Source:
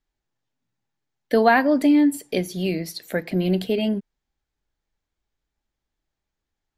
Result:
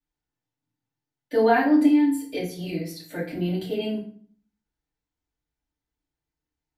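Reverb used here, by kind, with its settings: FDN reverb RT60 0.48 s, low-frequency decay 1.4×, high-frequency decay 0.8×, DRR -9.5 dB; trim -15 dB

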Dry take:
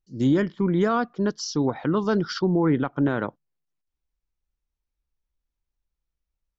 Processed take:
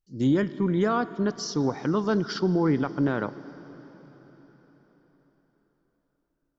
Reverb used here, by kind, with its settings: plate-style reverb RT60 4.8 s, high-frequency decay 0.95×, DRR 14.5 dB; trim -2 dB

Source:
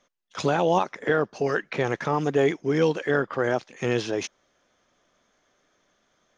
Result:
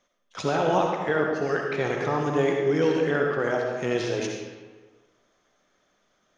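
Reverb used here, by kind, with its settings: algorithmic reverb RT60 1.4 s, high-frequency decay 0.7×, pre-delay 25 ms, DRR 0.5 dB; trim -3 dB

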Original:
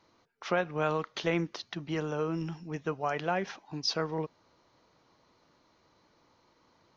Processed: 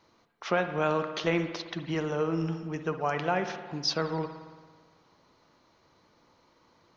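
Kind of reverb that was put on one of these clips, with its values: spring tank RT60 1.5 s, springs 55 ms, chirp 35 ms, DRR 8 dB; trim +2 dB

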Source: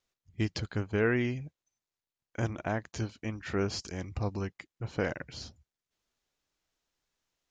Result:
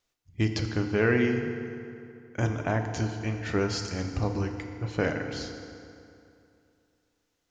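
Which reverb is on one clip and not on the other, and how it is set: FDN reverb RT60 2.6 s, high-frequency decay 0.7×, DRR 4.5 dB; trim +3.5 dB

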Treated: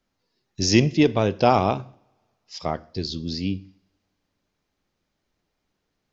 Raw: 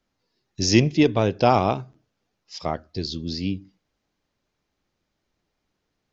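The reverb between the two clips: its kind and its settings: two-slope reverb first 0.56 s, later 2.1 s, from -25 dB, DRR 17.5 dB

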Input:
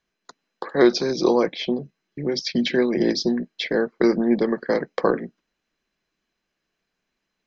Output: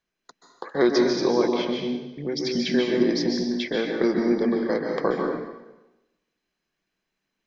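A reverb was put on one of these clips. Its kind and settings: plate-style reverb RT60 0.99 s, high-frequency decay 1×, pre-delay 120 ms, DRR 1 dB; trim -4.5 dB

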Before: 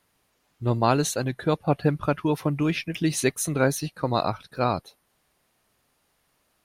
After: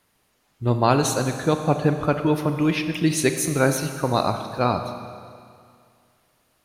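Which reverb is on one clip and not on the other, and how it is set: Schroeder reverb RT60 2.2 s, combs from 29 ms, DRR 7 dB; trim +2.5 dB

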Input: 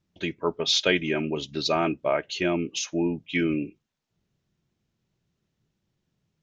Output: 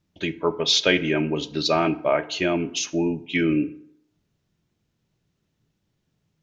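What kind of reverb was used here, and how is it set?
FDN reverb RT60 0.72 s, low-frequency decay 0.9×, high-frequency decay 0.6×, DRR 12 dB; trim +3 dB

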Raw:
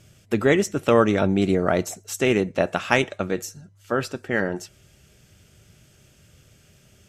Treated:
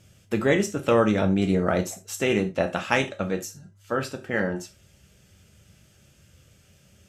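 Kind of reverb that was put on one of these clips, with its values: gated-style reverb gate 110 ms falling, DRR 5 dB; trim -3.5 dB

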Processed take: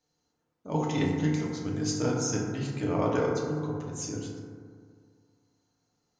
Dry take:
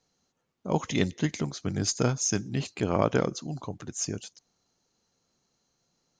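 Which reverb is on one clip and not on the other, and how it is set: FDN reverb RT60 2 s, low-frequency decay 1.05×, high-frequency decay 0.3×, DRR -4 dB; trim -7.5 dB

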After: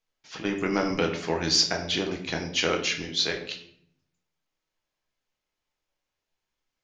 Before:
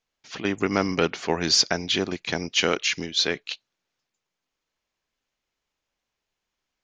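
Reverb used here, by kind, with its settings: simulated room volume 110 m³, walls mixed, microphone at 0.63 m; trim -4.5 dB

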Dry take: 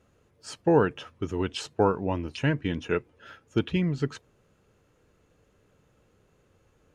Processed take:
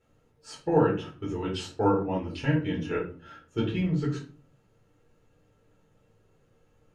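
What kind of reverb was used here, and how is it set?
simulated room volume 280 m³, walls furnished, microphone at 4.2 m; trim -10 dB

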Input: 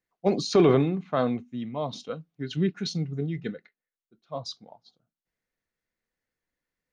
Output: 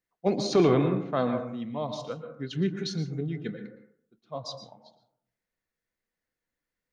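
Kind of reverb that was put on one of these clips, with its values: plate-style reverb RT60 0.66 s, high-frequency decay 0.3×, pre-delay 105 ms, DRR 7 dB; trim -2 dB

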